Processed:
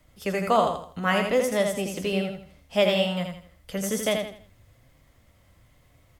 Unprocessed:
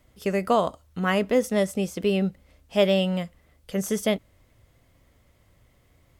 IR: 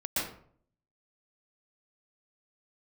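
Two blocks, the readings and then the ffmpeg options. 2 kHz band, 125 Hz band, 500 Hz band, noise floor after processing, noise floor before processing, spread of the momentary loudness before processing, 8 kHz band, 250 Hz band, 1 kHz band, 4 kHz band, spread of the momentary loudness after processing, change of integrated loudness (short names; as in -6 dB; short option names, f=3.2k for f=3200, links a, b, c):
+2.5 dB, -3.0 dB, -0.5 dB, -60 dBFS, -62 dBFS, 9 LU, +2.5 dB, -3.5 dB, +2.0 dB, +2.5 dB, 13 LU, -0.5 dB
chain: -filter_complex "[0:a]equalizer=f=390:w=2.2:g=-4.5,acrossover=split=350|580|6600[a][b][c][d];[a]alimiter=level_in=5dB:limit=-24dB:level=0:latency=1,volume=-5dB[e];[e][b][c][d]amix=inputs=4:normalize=0,aecho=1:1:82|164|246|328:0.562|0.186|0.0612|0.0202,flanger=delay=6.4:depth=4.5:regen=73:speed=1.2:shape=sinusoidal,volume=5.5dB"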